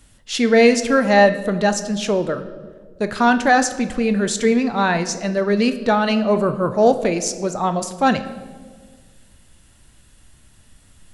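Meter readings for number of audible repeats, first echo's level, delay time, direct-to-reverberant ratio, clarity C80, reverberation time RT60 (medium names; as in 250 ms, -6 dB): no echo, no echo, no echo, 9.0 dB, 14.5 dB, 1.6 s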